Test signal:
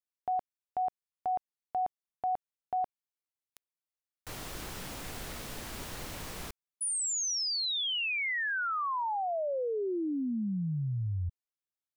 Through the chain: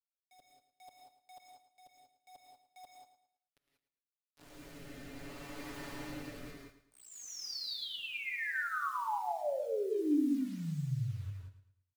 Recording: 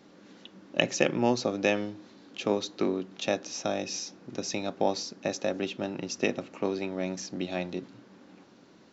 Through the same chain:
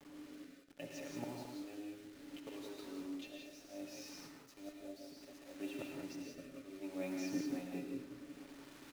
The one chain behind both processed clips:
low-pass filter 1,900 Hz 6 dB per octave
low-shelf EQ 67 Hz −9 dB
comb filter 7.1 ms, depth 78%
volume swells 722 ms
tuned comb filter 300 Hz, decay 0.17 s, harmonics all, mix 70%
bit reduction 10 bits
rotating-speaker cabinet horn 0.65 Hz
on a send: repeating echo 110 ms, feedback 36%, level −12 dB
on the sum: reverb whose tail is shaped and stops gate 210 ms rising, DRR 0.5 dB
level +3.5 dB

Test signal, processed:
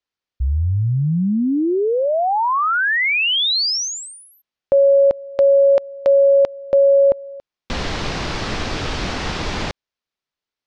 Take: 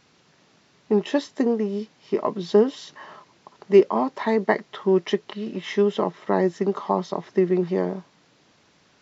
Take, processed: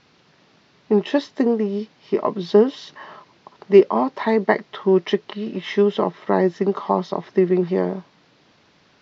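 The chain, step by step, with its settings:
low-pass filter 5,400 Hz 24 dB per octave
level +3 dB

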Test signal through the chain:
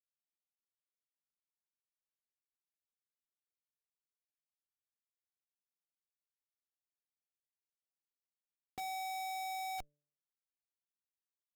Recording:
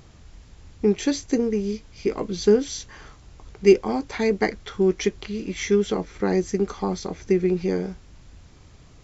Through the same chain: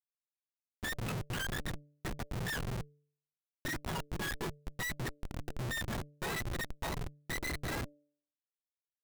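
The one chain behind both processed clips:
frequency axis turned over on the octave scale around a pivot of 860 Hz
comparator with hysteresis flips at −25.5 dBFS
hum removal 146.4 Hz, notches 4
level −8 dB

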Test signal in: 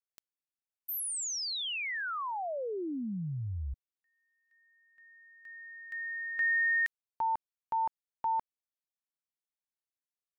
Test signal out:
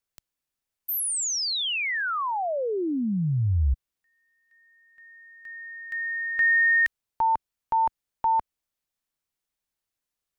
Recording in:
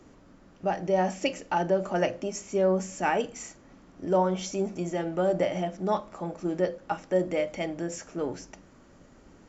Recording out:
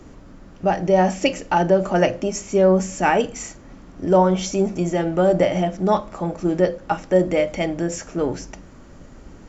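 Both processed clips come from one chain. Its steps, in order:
low-shelf EQ 100 Hz +10 dB
level +8 dB

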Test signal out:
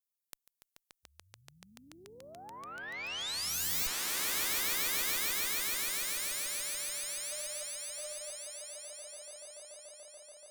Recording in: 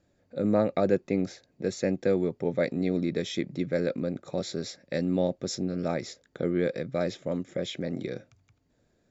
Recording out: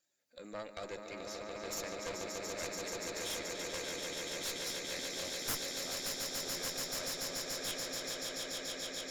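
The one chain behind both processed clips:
spectral magnitudes quantised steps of 15 dB
first difference
echo that builds up and dies away 144 ms, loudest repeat 8, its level −5 dB
harmonic generator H 3 −7 dB, 4 −9 dB, 7 −19 dB, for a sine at −22.5 dBFS
level +2.5 dB

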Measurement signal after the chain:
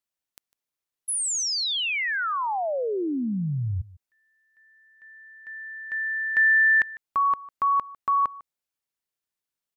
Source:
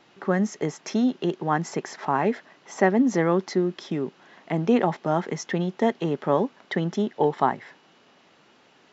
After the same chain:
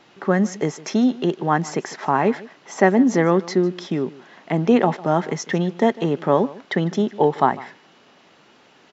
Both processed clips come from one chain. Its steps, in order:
single-tap delay 151 ms −20 dB
level +4.5 dB

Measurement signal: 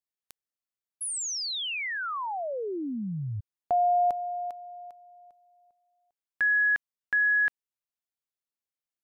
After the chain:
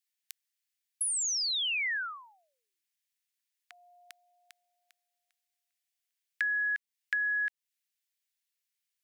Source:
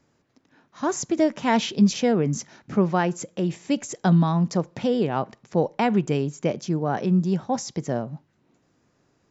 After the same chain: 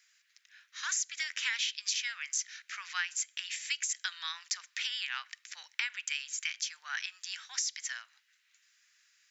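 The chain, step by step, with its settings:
Butterworth high-pass 1,700 Hz 36 dB per octave
downward compressor 6 to 1, threshold −38 dBFS
level +8 dB

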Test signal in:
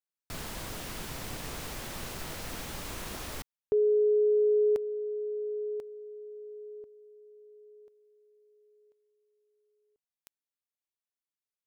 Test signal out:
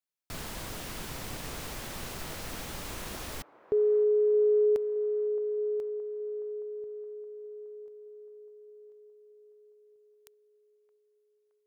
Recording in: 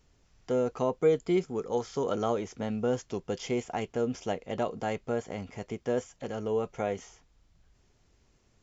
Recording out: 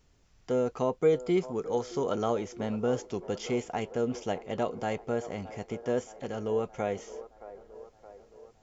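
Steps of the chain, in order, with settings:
delay with a band-pass on its return 620 ms, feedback 59%, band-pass 700 Hz, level −14 dB

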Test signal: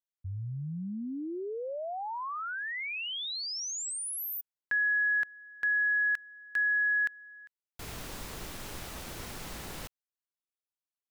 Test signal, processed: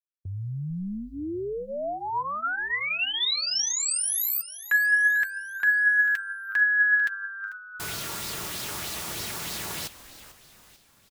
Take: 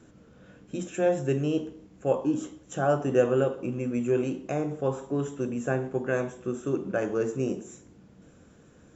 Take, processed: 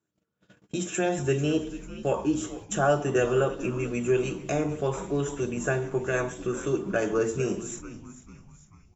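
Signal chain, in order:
high-pass filter 92 Hz 12 dB per octave
noise gate −49 dBFS, range −34 dB
high-shelf EQ 3,300 Hz +8 dB
in parallel at 0 dB: downward compressor, threshold −36 dBFS
on the sum: notch comb filter 260 Hz
on a send: echo with shifted repeats 444 ms, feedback 49%, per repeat −100 Hz, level −15 dB
on the sum: auto-filter bell 3.2 Hz 970–4,600 Hz +6 dB

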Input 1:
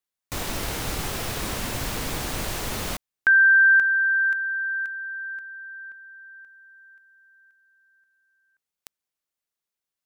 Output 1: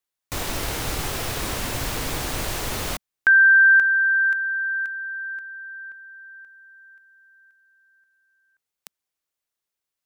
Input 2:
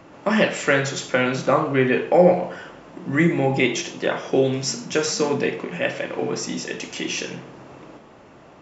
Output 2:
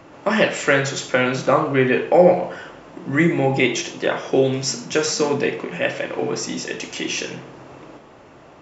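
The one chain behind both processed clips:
parametric band 200 Hz −5 dB 0.39 octaves
level +2 dB

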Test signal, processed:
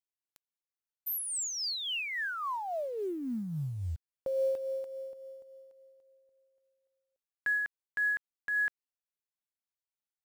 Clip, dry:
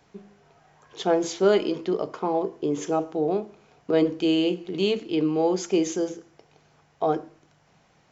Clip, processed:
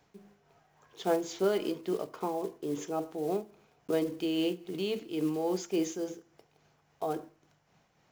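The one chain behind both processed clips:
one scale factor per block 5 bits
amplitude tremolo 3.6 Hz, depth 40%
level −6 dB

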